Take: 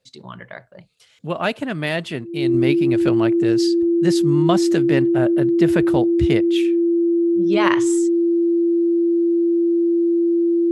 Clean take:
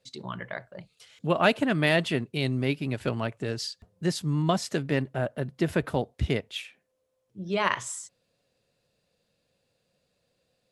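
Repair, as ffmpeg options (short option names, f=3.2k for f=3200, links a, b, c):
-af "bandreject=f=340:w=30,asetnsamples=n=441:p=0,asendcmd='2.54 volume volume -5.5dB',volume=0dB"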